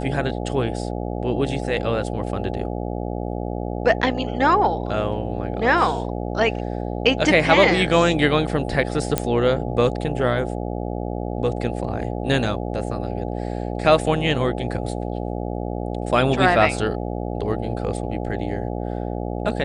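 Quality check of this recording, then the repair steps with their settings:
mains buzz 60 Hz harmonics 14 −27 dBFS
0:09.18: click −4 dBFS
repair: click removal
hum removal 60 Hz, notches 14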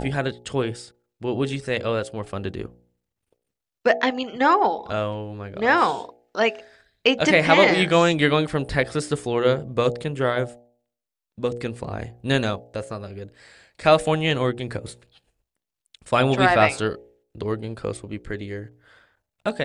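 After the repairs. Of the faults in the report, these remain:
none of them is left

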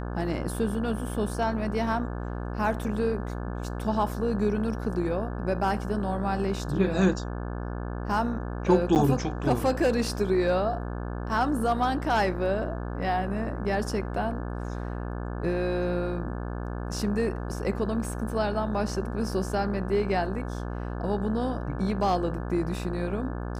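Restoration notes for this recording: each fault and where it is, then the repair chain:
mains buzz 60 Hz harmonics 29 −33 dBFS
0:08.95–0:08.96: drop-out 9.1 ms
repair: hum removal 60 Hz, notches 29
repair the gap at 0:08.95, 9.1 ms

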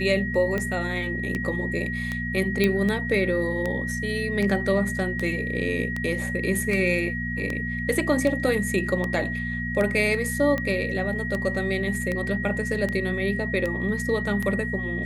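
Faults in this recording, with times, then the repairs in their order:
mains hum 60 Hz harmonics 4 −31 dBFS
scratch tick 78 rpm −15 dBFS
whistle 1,900 Hz −30 dBFS
0:02.64: click −9 dBFS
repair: click removal
hum removal 60 Hz, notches 4
notch filter 1,900 Hz, Q 30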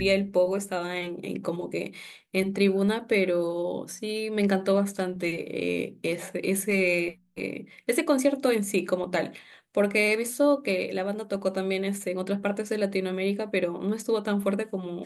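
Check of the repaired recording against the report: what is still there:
none of them is left

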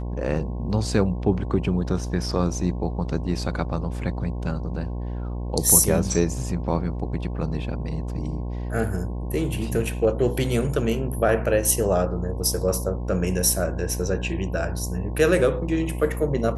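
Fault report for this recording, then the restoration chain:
mains buzz 60 Hz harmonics 18 −29 dBFS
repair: hum removal 60 Hz, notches 18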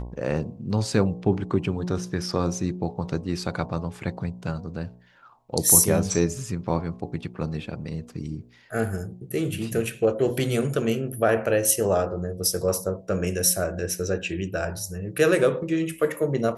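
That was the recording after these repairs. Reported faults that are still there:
none of them is left

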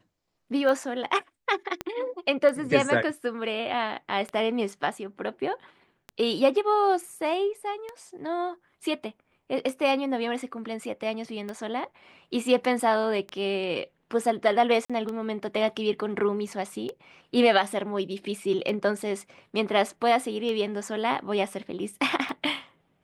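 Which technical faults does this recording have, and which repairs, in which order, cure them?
scratch tick 33 1/3 rpm −21 dBFS
0:01.81: click −15 dBFS
0:14.85–0:14.90: drop-out 46 ms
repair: click removal
repair the gap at 0:14.85, 46 ms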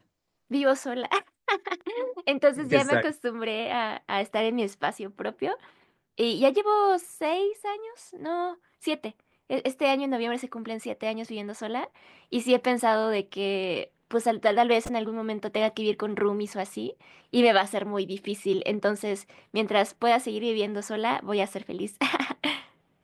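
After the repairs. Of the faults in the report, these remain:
0:01.81: click

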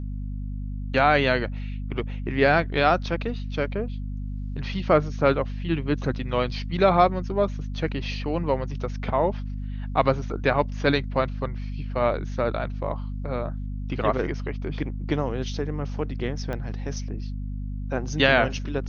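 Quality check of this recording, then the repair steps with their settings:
mains hum 50 Hz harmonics 5 −31 dBFS
0:16.53: click −19 dBFS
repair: click removal
hum removal 50 Hz, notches 5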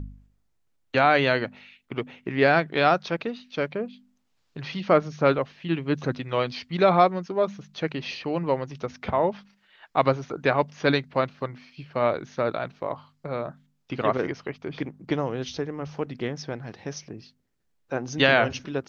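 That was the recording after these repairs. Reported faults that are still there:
0:16.53: click

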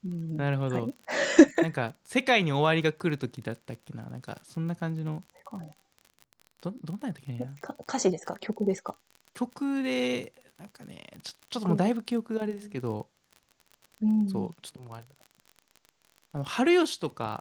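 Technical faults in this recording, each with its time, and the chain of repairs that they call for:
surface crackle 36 per second −37 dBFS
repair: click removal

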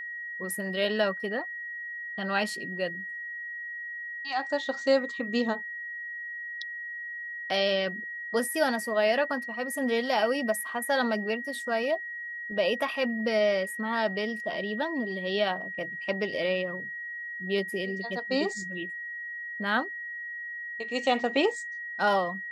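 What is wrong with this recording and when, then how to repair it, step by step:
whistle 1,900 Hz −35 dBFS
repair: notch filter 1,900 Hz, Q 30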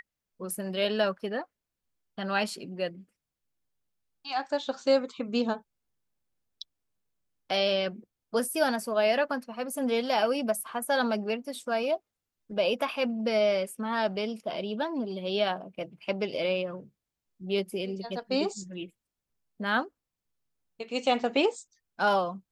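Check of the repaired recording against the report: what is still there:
none of them is left

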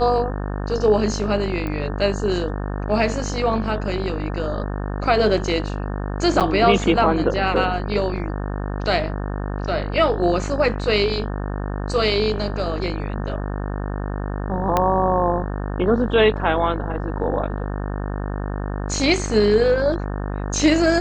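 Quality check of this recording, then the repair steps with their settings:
mains buzz 50 Hz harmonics 36 −26 dBFS
0:01.67: click −16 dBFS
0:06.40–0:06.41: drop-out 7.7 ms
0:14.77: click −5 dBFS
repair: click removal
hum removal 50 Hz, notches 36
repair the gap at 0:06.40, 7.7 ms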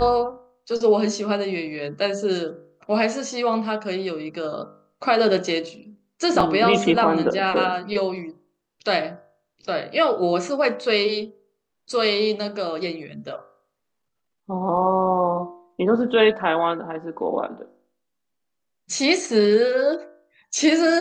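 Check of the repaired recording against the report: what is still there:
0:14.77: click

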